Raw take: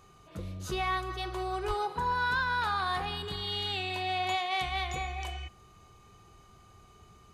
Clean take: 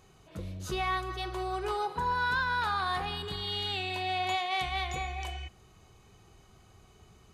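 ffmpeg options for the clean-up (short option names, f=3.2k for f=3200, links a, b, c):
-filter_complex "[0:a]bandreject=f=1.2k:w=30,asplit=3[a][b][c];[a]afade=t=out:st=1.67:d=0.02[d];[b]highpass=f=140:w=0.5412,highpass=f=140:w=1.3066,afade=t=in:st=1.67:d=0.02,afade=t=out:st=1.79:d=0.02[e];[c]afade=t=in:st=1.79:d=0.02[f];[d][e][f]amix=inputs=3:normalize=0"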